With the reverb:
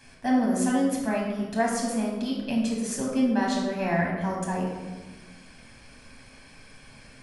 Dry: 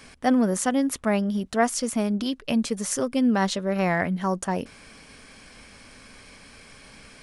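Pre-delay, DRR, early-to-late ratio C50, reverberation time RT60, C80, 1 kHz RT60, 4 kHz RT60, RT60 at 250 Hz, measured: 8 ms, −3.0 dB, 2.0 dB, 1.3 s, 4.5 dB, 1.2 s, 0.75 s, 1.8 s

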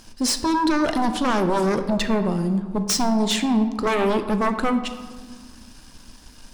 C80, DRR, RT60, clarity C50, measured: 12.0 dB, 7.5 dB, 1.6 s, 10.0 dB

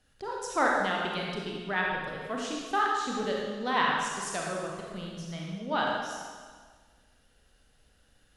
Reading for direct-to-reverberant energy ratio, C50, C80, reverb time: −2.5 dB, −0.5 dB, 1.5 dB, 1.6 s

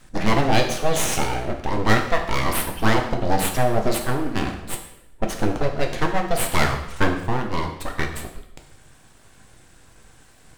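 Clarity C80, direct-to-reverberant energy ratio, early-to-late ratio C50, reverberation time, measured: 10.0 dB, 3.0 dB, 8.0 dB, 0.80 s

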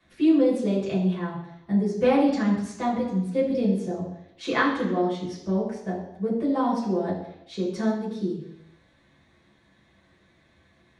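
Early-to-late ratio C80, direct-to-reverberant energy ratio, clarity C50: 7.5 dB, −7.5 dB, 5.0 dB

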